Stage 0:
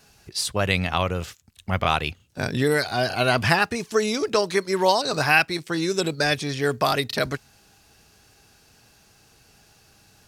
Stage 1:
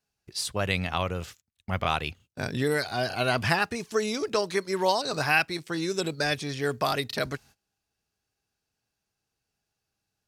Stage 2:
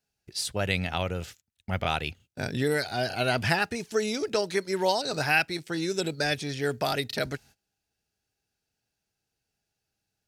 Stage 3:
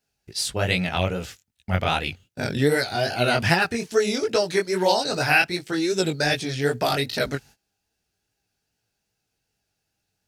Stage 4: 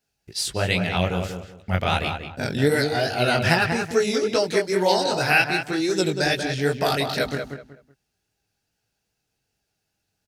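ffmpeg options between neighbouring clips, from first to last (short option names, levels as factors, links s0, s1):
-af "agate=range=0.0794:threshold=0.00501:ratio=16:detection=peak,volume=0.562"
-af "equalizer=f=1100:w=5.9:g=-11"
-af "flanger=delay=16:depth=6.3:speed=2.5,volume=2.51"
-filter_complex "[0:a]asplit=2[s0][s1];[s1]adelay=188,lowpass=f=2300:p=1,volume=0.501,asplit=2[s2][s3];[s3]adelay=188,lowpass=f=2300:p=1,volume=0.27,asplit=2[s4][s5];[s5]adelay=188,lowpass=f=2300:p=1,volume=0.27[s6];[s0][s2][s4][s6]amix=inputs=4:normalize=0"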